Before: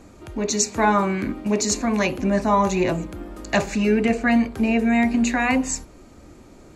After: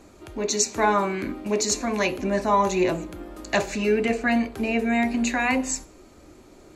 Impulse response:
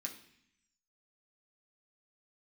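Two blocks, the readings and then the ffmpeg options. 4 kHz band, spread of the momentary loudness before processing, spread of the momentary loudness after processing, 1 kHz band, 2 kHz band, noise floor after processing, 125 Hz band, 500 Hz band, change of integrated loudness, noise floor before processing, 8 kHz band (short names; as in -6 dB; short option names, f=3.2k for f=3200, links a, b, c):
-0.5 dB, 9 LU, 9 LU, -1.5 dB, -1.5 dB, -51 dBFS, -6.5 dB, -1.0 dB, -2.5 dB, -47 dBFS, -1.0 dB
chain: -filter_complex "[0:a]asplit=2[a][b];[1:a]atrim=start_sample=2205,asetrate=70560,aresample=44100[c];[b][c]afir=irnorm=-1:irlink=0,volume=-2.5dB[d];[a][d]amix=inputs=2:normalize=0,volume=-2dB"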